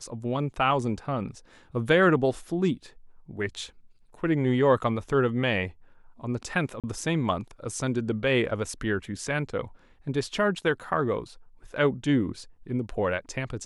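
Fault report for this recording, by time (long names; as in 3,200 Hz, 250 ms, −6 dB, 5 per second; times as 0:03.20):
0:06.80–0:06.84: drop-out 37 ms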